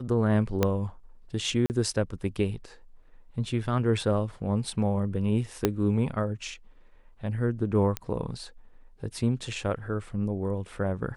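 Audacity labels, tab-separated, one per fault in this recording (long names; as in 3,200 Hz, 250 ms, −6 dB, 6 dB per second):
0.630000	0.630000	click −9 dBFS
1.660000	1.700000	drop-out 39 ms
5.650000	5.650000	click −8 dBFS
7.970000	7.970000	click −13 dBFS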